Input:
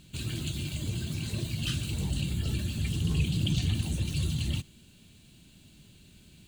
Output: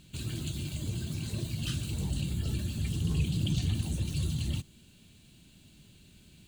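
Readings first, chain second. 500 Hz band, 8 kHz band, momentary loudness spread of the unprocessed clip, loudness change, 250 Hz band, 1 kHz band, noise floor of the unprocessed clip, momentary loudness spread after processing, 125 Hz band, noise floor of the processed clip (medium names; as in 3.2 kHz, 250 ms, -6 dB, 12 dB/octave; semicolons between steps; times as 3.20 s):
-1.5 dB, -2.0 dB, 6 LU, -2.0 dB, -1.5 dB, -2.5 dB, -57 dBFS, 6 LU, -1.5 dB, -58 dBFS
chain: dynamic bell 2.5 kHz, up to -4 dB, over -49 dBFS, Q 1; trim -1.5 dB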